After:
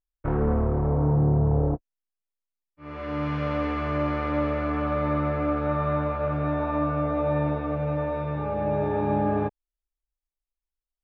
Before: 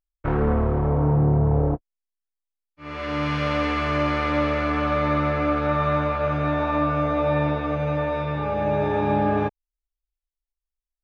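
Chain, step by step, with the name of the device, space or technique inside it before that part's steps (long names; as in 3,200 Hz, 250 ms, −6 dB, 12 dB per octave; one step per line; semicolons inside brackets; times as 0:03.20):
through cloth (high-shelf EQ 2,200 Hz −14.5 dB)
level −2 dB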